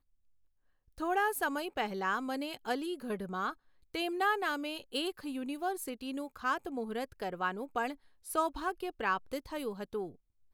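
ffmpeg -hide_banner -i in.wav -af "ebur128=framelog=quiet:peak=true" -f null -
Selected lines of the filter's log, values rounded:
Integrated loudness:
  I:         -35.5 LUFS
  Threshold: -45.7 LUFS
Loudness range:
  LRA:         1.9 LU
  Threshold: -55.7 LUFS
  LRA low:   -36.9 LUFS
  LRA high:  -34.9 LUFS
True peak:
  Peak:      -18.0 dBFS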